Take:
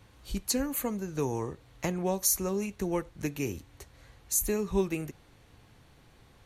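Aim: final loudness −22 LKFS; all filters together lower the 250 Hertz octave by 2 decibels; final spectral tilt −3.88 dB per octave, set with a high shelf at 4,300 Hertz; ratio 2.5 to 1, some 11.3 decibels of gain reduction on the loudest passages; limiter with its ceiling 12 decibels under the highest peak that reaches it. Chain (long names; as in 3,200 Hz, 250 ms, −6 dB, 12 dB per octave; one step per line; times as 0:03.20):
parametric band 250 Hz −3 dB
high-shelf EQ 4,300 Hz +9 dB
downward compressor 2.5 to 1, threshold −32 dBFS
level +16.5 dB
brickwall limiter −11 dBFS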